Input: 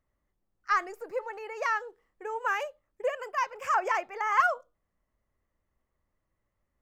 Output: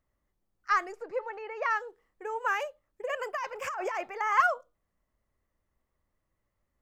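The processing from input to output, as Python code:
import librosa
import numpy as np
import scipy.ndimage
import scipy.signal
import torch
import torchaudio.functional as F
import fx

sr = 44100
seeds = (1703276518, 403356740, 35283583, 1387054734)

y = fx.lowpass(x, sr, hz=fx.line((0.92, 6300.0), (1.69, 2900.0)), slope=12, at=(0.92, 1.69), fade=0.02)
y = fx.over_compress(y, sr, threshold_db=-32.0, ratio=-1.0, at=(3.04, 4.11), fade=0.02)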